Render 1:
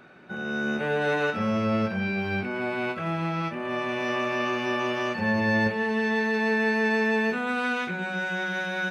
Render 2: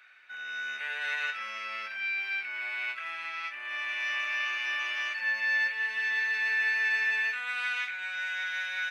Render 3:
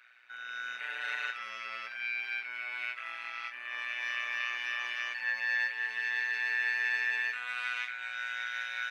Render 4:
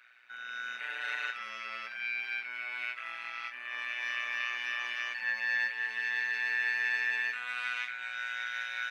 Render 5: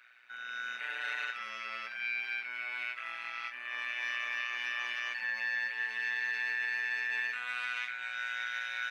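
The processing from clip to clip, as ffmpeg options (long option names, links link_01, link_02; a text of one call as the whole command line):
ffmpeg -i in.wav -af "highpass=frequency=2000:width_type=q:width=2.2,volume=-3.5dB" out.wav
ffmpeg -i in.wav -af "tremolo=f=120:d=0.788" out.wav
ffmpeg -i in.wav -af "equalizer=frequency=220:width=2:gain=4.5" out.wav
ffmpeg -i in.wav -af "alimiter=level_in=1dB:limit=-24dB:level=0:latency=1:release=58,volume=-1dB" out.wav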